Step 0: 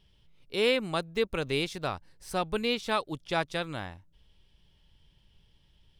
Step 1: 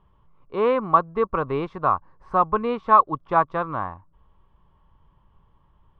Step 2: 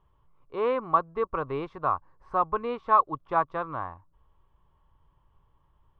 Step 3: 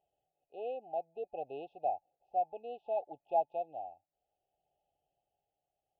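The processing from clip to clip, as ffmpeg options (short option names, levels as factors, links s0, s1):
-af "lowpass=f=1100:t=q:w=9.2,volume=1.58"
-af "equalizer=f=200:t=o:w=0.43:g=-8,volume=0.531"
-filter_complex "[0:a]tremolo=f=0.62:d=0.42,asplit=3[s0][s1][s2];[s0]bandpass=f=730:t=q:w=8,volume=1[s3];[s1]bandpass=f=1090:t=q:w=8,volume=0.501[s4];[s2]bandpass=f=2440:t=q:w=8,volume=0.355[s5];[s3][s4][s5]amix=inputs=3:normalize=0,afftfilt=real='re*(1-between(b*sr/4096,860,2500))':imag='im*(1-between(b*sr/4096,860,2500))':win_size=4096:overlap=0.75,volume=1.88"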